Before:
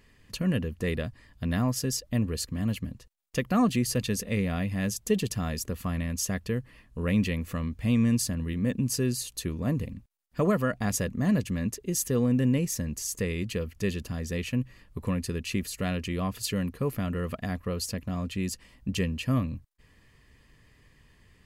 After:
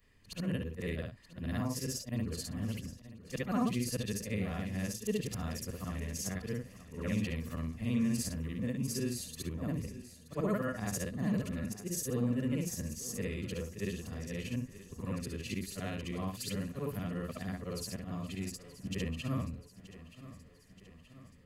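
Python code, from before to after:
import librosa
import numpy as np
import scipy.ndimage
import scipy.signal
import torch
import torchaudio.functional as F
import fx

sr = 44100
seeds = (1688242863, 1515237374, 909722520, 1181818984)

p1 = fx.frame_reverse(x, sr, frame_ms=148.0)
p2 = p1 + fx.echo_feedback(p1, sr, ms=927, feedback_pct=56, wet_db=-16.0, dry=0)
y = p2 * librosa.db_to_amplitude(-4.5)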